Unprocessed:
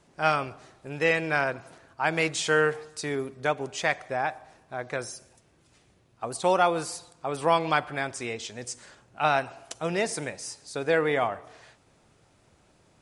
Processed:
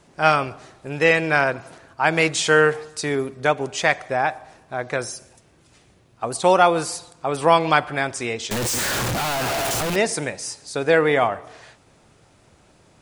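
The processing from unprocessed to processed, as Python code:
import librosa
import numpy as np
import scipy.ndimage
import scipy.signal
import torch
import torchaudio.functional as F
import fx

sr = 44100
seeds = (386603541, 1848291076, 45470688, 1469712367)

y = fx.clip_1bit(x, sr, at=(8.51, 9.96))
y = F.gain(torch.from_numpy(y), 7.0).numpy()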